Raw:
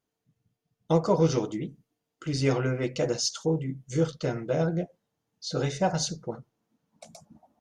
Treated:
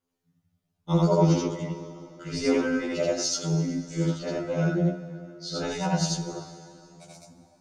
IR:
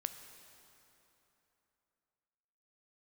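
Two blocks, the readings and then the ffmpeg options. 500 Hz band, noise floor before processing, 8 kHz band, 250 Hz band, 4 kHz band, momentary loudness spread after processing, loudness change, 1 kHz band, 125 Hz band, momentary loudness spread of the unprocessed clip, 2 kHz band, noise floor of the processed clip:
0.0 dB, -84 dBFS, +2.0 dB, +3.5 dB, +1.0 dB, 15 LU, +1.5 dB, +1.0 dB, +2.5 dB, 15 LU, +3.0 dB, -78 dBFS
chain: -filter_complex "[0:a]aphaser=in_gain=1:out_gain=1:delay=1.7:decay=0.28:speed=0.82:type=triangular,asplit=2[a][b];[1:a]atrim=start_sample=2205,adelay=81[c];[b][c]afir=irnorm=-1:irlink=0,volume=1.5dB[d];[a][d]amix=inputs=2:normalize=0,afftfilt=real='re*2*eq(mod(b,4),0)':imag='im*2*eq(mod(b,4),0)':win_size=2048:overlap=0.75"

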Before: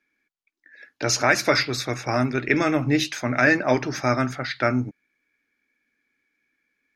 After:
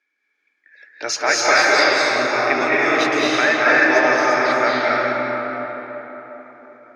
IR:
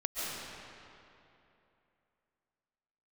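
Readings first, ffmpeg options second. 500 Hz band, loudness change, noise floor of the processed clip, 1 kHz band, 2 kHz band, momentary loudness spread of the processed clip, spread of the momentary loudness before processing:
+6.5 dB, +6.0 dB, -71 dBFS, +9.0 dB, +8.5 dB, 17 LU, 8 LU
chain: -filter_complex "[0:a]highpass=480,lowpass=7.1k[a];[1:a]atrim=start_sample=2205,asetrate=29106,aresample=44100[b];[a][b]afir=irnorm=-1:irlink=0"

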